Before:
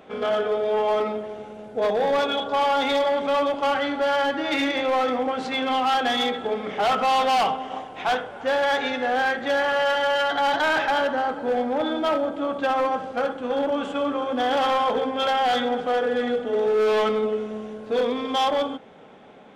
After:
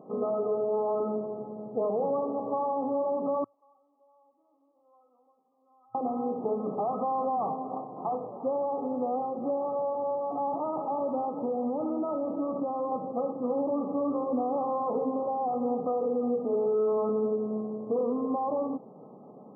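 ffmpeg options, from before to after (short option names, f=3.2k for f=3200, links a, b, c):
-filter_complex "[0:a]asettb=1/sr,asplit=3[a][b][c];[a]atrim=end=3.444[d];[b]atrim=start=3.44:end=5.95,asetpts=PTS-STARTPTS,afade=t=in:d=0.004:c=qsin,afade=t=out:st=2.506:d=0.004:c=qsin,bandpass=f=3.4k:t=q:w=16[e];[c]atrim=start=5.946[f];[d][e]acrossfade=d=0.004:c1=hsin:c2=qsin[g];[g][f]acrossfade=d=0.004:c1=qsin:c2=hsin,asettb=1/sr,asplit=3[h][i][j];[h]atrim=end=11.294[k];[i]atrim=start=11.29:end=12.92,asetpts=PTS-STARTPTS,afade=t=in:d=0.004:c=qsin,afade=t=out:st=1.626:d=0.004:c=qsin,acompressor=threshold=-25dB:ratio=6:attack=3.2:release=140:knee=1:detection=peak[l];[j]atrim=start=12.916[m];[k][l]acrossfade=d=0.004:c1=hsin:c2=qsin[n];[n][m]acrossfade=d=0.004:c1=qsin:c2=hsin,acompressor=threshold=-24dB:ratio=6,tiltshelf=f=630:g=5.5,afftfilt=real='re*between(b*sr/4096,110,1300)':imag='im*between(b*sr/4096,110,1300)':win_size=4096:overlap=0.75,volume=-2.5dB"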